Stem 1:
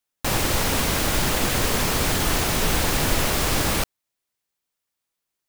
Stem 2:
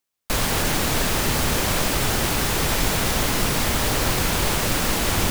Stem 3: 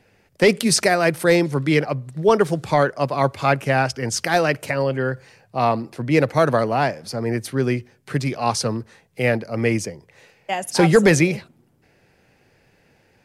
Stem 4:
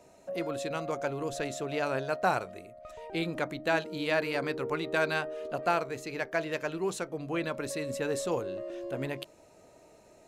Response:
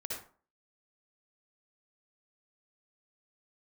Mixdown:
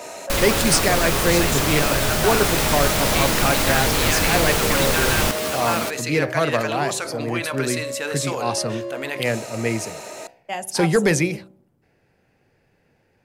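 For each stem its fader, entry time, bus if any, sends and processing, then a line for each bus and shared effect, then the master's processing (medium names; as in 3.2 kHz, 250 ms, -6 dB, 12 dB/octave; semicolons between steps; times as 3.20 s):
+1.0 dB, 2.05 s, no send, high-pass 150 Hz 12 dB/octave; peak limiter -14.5 dBFS, peak gain reduction 3.5 dB; three-phase chorus
+0.5 dB, 0.00 s, no send, none
-3.5 dB, 0.00 s, no send, treble shelf 7.7 kHz +7 dB
+0.5 dB, 0.00 s, send -15.5 dB, high-pass 530 Hz 6 dB/octave; tilt shelf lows -4 dB, about 840 Hz; level flattener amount 70%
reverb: on, RT60 0.40 s, pre-delay 52 ms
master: de-hum 63.37 Hz, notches 16; tape noise reduction on one side only decoder only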